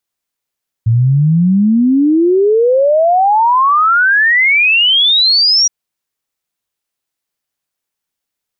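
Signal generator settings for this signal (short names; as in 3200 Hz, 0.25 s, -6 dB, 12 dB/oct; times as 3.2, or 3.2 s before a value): log sweep 110 Hz -> 5800 Hz 4.82 s -7 dBFS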